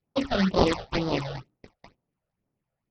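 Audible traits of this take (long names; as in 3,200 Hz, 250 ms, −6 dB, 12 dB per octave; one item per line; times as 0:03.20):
aliases and images of a low sample rate 1,600 Hz, jitter 20%
phaser sweep stages 8, 2.1 Hz, lowest notch 280–2,500 Hz
SBC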